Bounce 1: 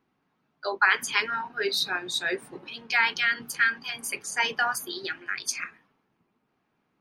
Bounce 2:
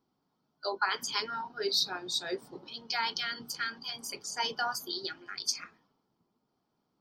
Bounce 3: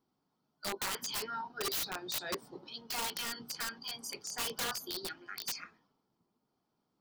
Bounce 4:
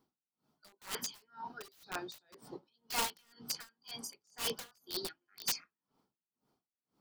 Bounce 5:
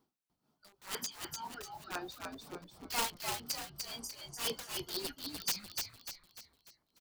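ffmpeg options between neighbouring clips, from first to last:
-af "superequalizer=10b=0.708:11b=0.316:12b=0.316:14b=2.24:16b=0.355,volume=-4dB"
-af "aeval=exprs='(mod(22.4*val(0)+1,2)-1)/22.4':c=same,volume=-2.5dB"
-af "aeval=exprs='val(0)*pow(10,-36*(0.5-0.5*cos(2*PI*2*n/s))/20)':c=same,volume=4.5dB"
-filter_complex "[0:a]asplit=6[a][b][c][d][e][f];[b]adelay=297,afreqshift=-91,volume=-4dB[g];[c]adelay=594,afreqshift=-182,volume=-11.3dB[h];[d]adelay=891,afreqshift=-273,volume=-18.7dB[i];[e]adelay=1188,afreqshift=-364,volume=-26dB[j];[f]adelay=1485,afreqshift=-455,volume=-33.3dB[k];[a][g][h][i][j][k]amix=inputs=6:normalize=0"

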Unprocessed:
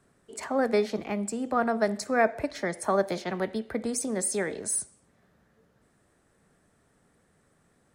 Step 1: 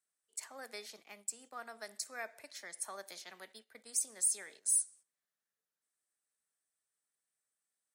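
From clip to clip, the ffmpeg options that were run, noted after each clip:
-af "aderivative,agate=range=-11dB:threshold=-54dB:ratio=16:detection=peak,volume=-2.5dB"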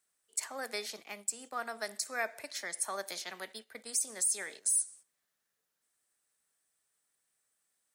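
-af "alimiter=level_in=4dB:limit=-24dB:level=0:latency=1:release=114,volume=-4dB,volume=8.5dB"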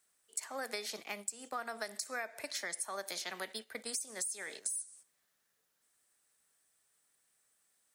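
-af "acompressor=threshold=-40dB:ratio=12,volume=4.5dB"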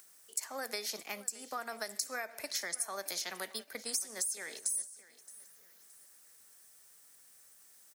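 -af "aexciter=amount=2.3:drive=1.4:freq=4.9k,acompressor=mode=upward:threshold=-49dB:ratio=2.5,aecho=1:1:620|1240|1860:0.112|0.0404|0.0145"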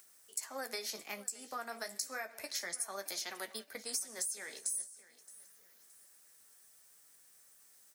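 -af "flanger=delay=7.8:depth=9.7:regen=-38:speed=0.3:shape=triangular,volume=1.5dB"

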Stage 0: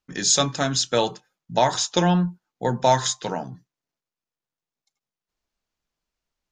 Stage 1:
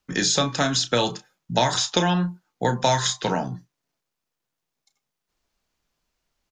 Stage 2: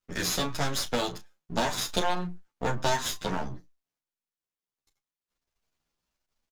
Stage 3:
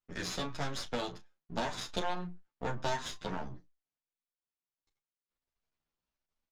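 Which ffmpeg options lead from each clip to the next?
-filter_complex "[0:a]acrossover=split=320|1100|4800[a][b][c][d];[a]acompressor=threshold=-33dB:ratio=4[e];[b]acompressor=threshold=-33dB:ratio=4[f];[c]acompressor=threshold=-31dB:ratio=4[g];[d]acompressor=threshold=-38dB:ratio=4[h];[e][f][g][h]amix=inputs=4:normalize=0,asplit=2[i][j];[j]adelay=33,volume=-12dB[k];[i][k]amix=inputs=2:normalize=0,volume=7dB"
-filter_complex "[0:a]aeval=exprs='max(val(0),0)':c=same,asplit=2[a][b];[b]adelay=10.6,afreqshift=1.4[c];[a][c]amix=inputs=2:normalize=1"
-af "adynamicsmooth=sensitivity=1.5:basefreq=6k,volume=-7dB"

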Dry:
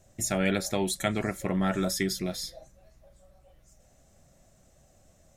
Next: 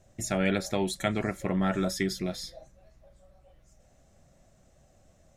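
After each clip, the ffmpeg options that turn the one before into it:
-af "highshelf=f=7.4k:g=-10"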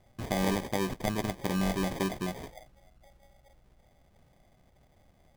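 -af "acrusher=samples=32:mix=1:aa=0.000001,volume=-2dB"

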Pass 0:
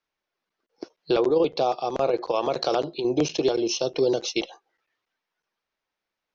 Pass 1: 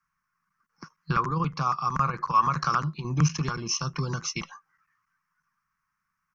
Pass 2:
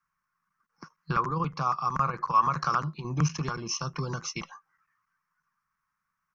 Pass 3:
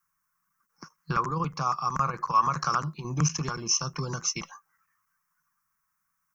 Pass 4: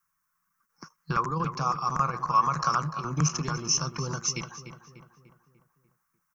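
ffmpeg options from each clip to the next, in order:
-af "firequalizer=gain_entry='entry(110,0);entry(160,7);entry(280,-18);entry(400,-27);entry(680,-28);entry(1100,6);entry(3600,-24);entry(5500,-6)':delay=0.05:min_phase=1,volume=8dB"
-af "equalizer=f=640:w=0.79:g=5.5,volume=-4dB"
-af "aexciter=amount=4.4:drive=3:freq=5.7k"
-filter_complex "[0:a]asplit=2[a][b];[b]adelay=296,lowpass=f=2.7k:p=1,volume=-10dB,asplit=2[c][d];[d]adelay=296,lowpass=f=2.7k:p=1,volume=0.51,asplit=2[e][f];[f]adelay=296,lowpass=f=2.7k:p=1,volume=0.51,asplit=2[g][h];[h]adelay=296,lowpass=f=2.7k:p=1,volume=0.51,asplit=2[i][j];[j]adelay=296,lowpass=f=2.7k:p=1,volume=0.51,asplit=2[k][l];[l]adelay=296,lowpass=f=2.7k:p=1,volume=0.51[m];[a][c][e][g][i][k][m]amix=inputs=7:normalize=0"

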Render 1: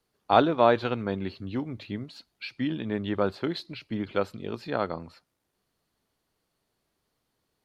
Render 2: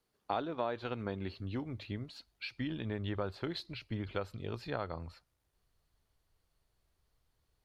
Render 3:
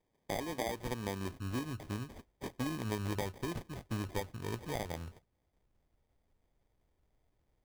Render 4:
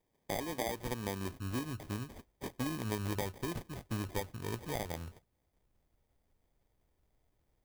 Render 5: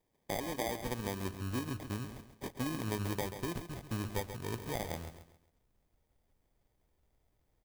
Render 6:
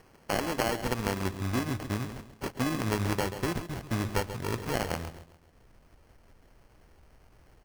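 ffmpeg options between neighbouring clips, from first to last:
-af "asubboost=boost=8.5:cutoff=77,acompressor=threshold=-29dB:ratio=4,volume=-4dB"
-filter_complex "[0:a]asplit=2[a][b];[b]alimiter=level_in=3dB:limit=-24dB:level=0:latency=1:release=409,volume=-3dB,volume=2dB[c];[a][c]amix=inputs=2:normalize=0,acrusher=samples=32:mix=1:aa=0.000001,volume=-6dB"
-af "highshelf=f=9.7k:g=6.5"
-af "aecho=1:1:135|270|405|540:0.316|0.108|0.0366|0.0124"
-af "acompressor=mode=upward:threshold=-53dB:ratio=2.5,acrusher=samples=12:mix=1:aa=0.000001,volume=6.5dB"

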